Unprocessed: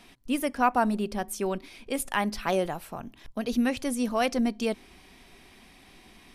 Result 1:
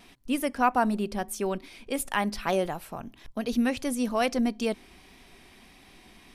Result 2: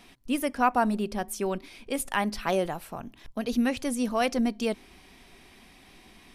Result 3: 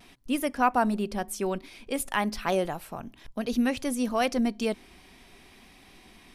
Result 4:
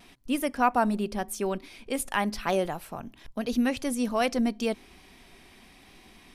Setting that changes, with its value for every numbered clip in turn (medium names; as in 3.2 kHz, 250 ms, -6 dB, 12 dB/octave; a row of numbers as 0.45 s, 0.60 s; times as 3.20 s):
vibrato, rate: 1.6 Hz, 6.3 Hz, 0.57 Hz, 0.88 Hz